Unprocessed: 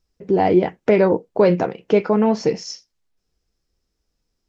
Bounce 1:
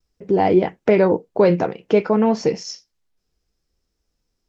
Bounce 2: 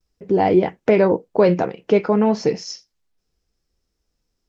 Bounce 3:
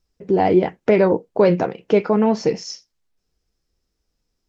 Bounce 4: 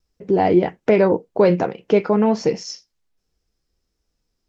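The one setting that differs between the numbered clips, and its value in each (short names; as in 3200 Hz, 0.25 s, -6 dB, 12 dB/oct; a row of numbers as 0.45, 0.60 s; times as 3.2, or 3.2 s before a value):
vibrato, rate: 0.55, 0.3, 11, 1.3 Hz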